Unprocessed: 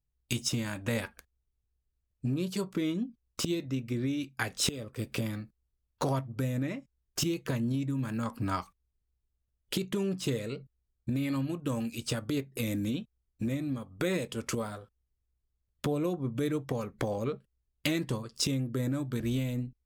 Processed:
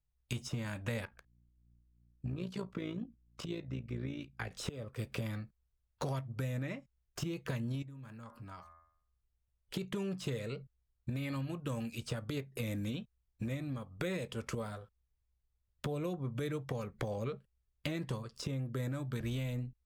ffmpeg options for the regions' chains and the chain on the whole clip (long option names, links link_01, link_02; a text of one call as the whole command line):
ffmpeg -i in.wav -filter_complex "[0:a]asettb=1/sr,asplit=3[link_01][link_02][link_03];[link_01]atrim=end=1.054[link_04];[link_02]atrim=start=1.05:end=4.51,asetpts=PTS-STARTPTS,afade=type=in:duration=0.004:curve=qsin,afade=type=out:start_time=3.456:duration=0.004:curve=qsin,lowpass=frequency=3000:poles=1,aeval=exprs='val(0)+0.000708*(sin(2*PI*60*n/s)+sin(2*PI*2*60*n/s)/2+sin(2*PI*3*60*n/s)/3+sin(2*PI*4*60*n/s)/4+sin(2*PI*5*60*n/s)/5)':channel_layout=same,tremolo=f=57:d=0.667[link_05];[link_03]atrim=start=4.506[link_06];[link_04][link_05]acrossfade=duration=0.004:curve1=hsin:curve2=qsin[link_07];[link_07][link_06]acrossfade=duration=0.004:curve1=qsin:curve2=hsin,asettb=1/sr,asplit=3[link_08][link_09][link_10];[link_08]atrim=end=7.824[link_11];[link_09]atrim=start=7.82:end=9.74,asetpts=PTS-STARTPTS,afade=type=in:duration=0.004:curve=qsin,afade=type=out:start_time=1.916:duration=0.004:curve=qsin,bandreject=frequency=81.91:width_type=h:width=4,bandreject=frequency=163.82:width_type=h:width=4,bandreject=frequency=245.73:width_type=h:width=4,bandreject=frequency=327.64:width_type=h:width=4,bandreject=frequency=409.55:width_type=h:width=4,bandreject=frequency=491.46:width_type=h:width=4,bandreject=frequency=573.37:width_type=h:width=4,bandreject=frequency=655.28:width_type=h:width=4,bandreject=frequency=737.19:width_type=h:width=4,bandreject=frequency=819.1:width_type=h:width=4,bandreject=frequency=901.01:width_type=h:width=4,bandreject=frequency=982.92:width_type=h:width=4,bandreject=frequency=1064.83:width_type=h:width=4,bandreject=frequency=1146.74:width_type=h:width=4,bandreject=frequency=1228.65:width_type=h:width=4,bandreject=frequency=1310.56:width_type=h:width=4,bandreject=frequency=1392.47:width_type=h:width=4,bandreject=frequency=1474.38:width_type=h:width=4,bandreject=frequency=1556.29:width_type=h:width=4,bandreject=frequency=1638.2:width_type=h:width=4,bandreject=frequency=1720.11:width_type=h:width=4,bandreject=frequency=1802.02:width_type=h:width=4,bandreject=frequency=1883.93:width_type=h:width=4,bandreject=frequency=1965.84:width_type=h:width=4,bandreject=frequency=2047.75:width_type=h:width=4,bandreject=frequency=2129.66:width_type=h:width=4,acompressor=threshold=-55dB:ratio=2:attack=3.2:release=140:knee=1:detection=peak[link_12];[link_10]atrim=start=9.736[link_13];[link_11][link_12]acrossfade=duration=0.004:curve1=hsin:curve2=qsin[link_14];[link_14][link_13]acrossfade=duration=0.004:curve1=qsin:curve2=hsin,equalizer=frequency=290:width=1.5:gain=-8,acrossover=split=580|1600[link_15][link_16][link_17];[link_15]acompressor=threshold=-34dB:ratio=4[link_18];[link_16]acompressor=threshold=-48dB:ratio=4[link_19];[link_17]acompressor=threshold=-40dB:ratio=4[link_20];[link_18][link_19][link_20]amix=inputs=3:normalize=0,highshelf=frequency=3800:gain=-7.5" out.wav